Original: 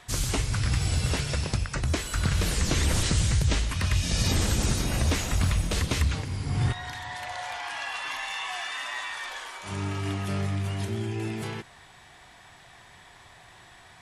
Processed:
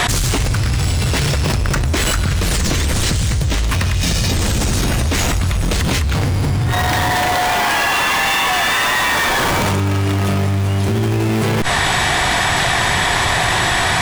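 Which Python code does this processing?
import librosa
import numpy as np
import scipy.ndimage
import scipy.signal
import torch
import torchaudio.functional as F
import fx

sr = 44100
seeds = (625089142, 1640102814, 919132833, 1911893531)

p1 = fx.schmitt(x, sr, flips_db=-37.5)
p2 = x + (p1 * 10.0 ** (-3.5 / 20.0))
p3 = fx.env_flatten(p2, sr, amount_pct=100)
y = p3 * 10.0 ** (2.0 / 20.0)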